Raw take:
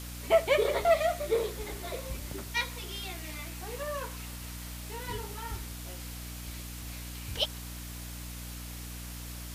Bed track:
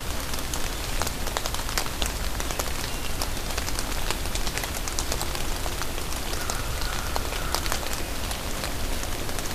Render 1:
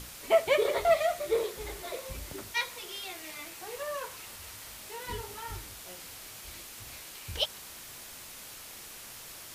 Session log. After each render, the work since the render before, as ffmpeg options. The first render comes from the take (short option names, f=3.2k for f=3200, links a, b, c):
-af "bandreject=f=60:t=h:w=6,bandreject=f=120:t=h:w=6,bandreject=f=180:t=h:w=6,bandreject=f=240:t=h:w=6,bandreject=f=300:t=h:w=6"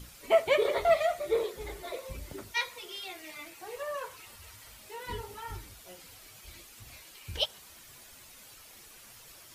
-af "afftdn=nr=9:nf=-47"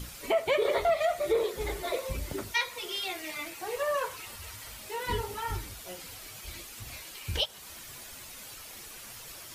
-af "acontrast=78,alimiter=limit=-18dB:level=0:latency=1:release=273"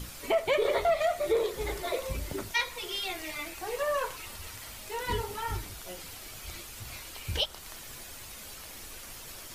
-filter_complex "[1:a]volume=-23.5dB[a];[0:a][a]amix=inputs=2:normalize=0"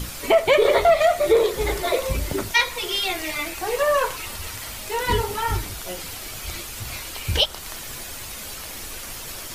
-af "volume=10dB"